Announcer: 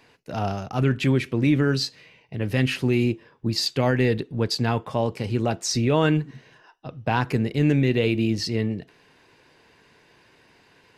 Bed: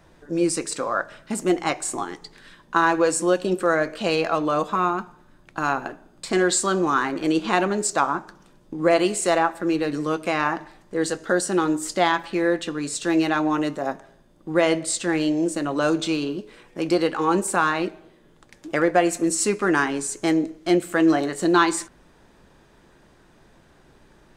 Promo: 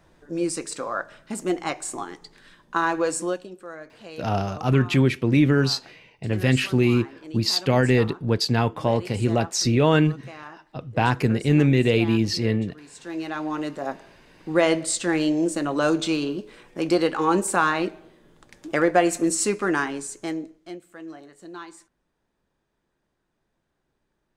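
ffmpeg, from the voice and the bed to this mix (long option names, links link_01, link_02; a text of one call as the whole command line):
ffmpeg -i stem1.wav -i stem2.wav -filter_complex "[0:a]adelay=3900,volume=2dB[link_01];[1:a]volume=14.5dB,afade=type=out:start_time=3.21:duration=0.28:silence=0.188365,afade=type=in:start_time=12.9:duration=1.46:silence=0.11885,afade=type=out:start_time=19.24:duration=1.55:silence=0.0841395[link_02];[link_01][link_02]amix=inputs=2:normalize=0" out.wav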